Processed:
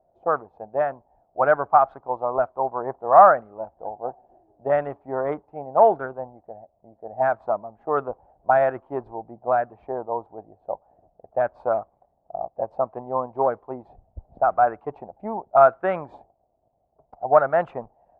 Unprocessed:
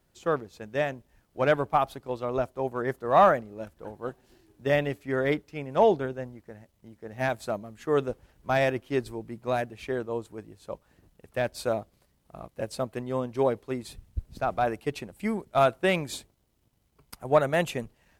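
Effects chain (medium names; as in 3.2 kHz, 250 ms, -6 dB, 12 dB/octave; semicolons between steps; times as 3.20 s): peaking EQ 720 Hz +13.5 dB 1 oct; touch-sensitive low-pass 670–1400 Hz up, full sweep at -13.5 dBFS; trim -7 dB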